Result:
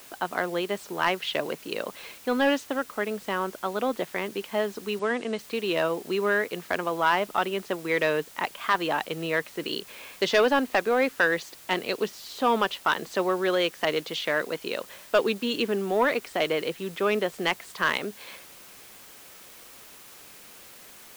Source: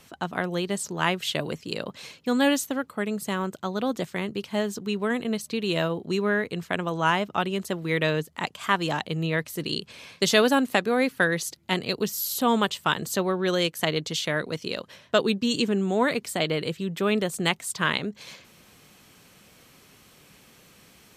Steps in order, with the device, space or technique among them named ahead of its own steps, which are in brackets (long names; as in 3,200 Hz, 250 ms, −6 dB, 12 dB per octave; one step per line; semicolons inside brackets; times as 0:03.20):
tape answering machine (band-pass filter 350–2,900 Hz; soft clipping −15 dBFS, distortion −16 dB; tape wow and flutter 20 cents; white noise bed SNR 21 dB)
0:04.99–0:05.39: Chebyshev band-pass filter 120–8,900 Hz, order 4
level +3 dB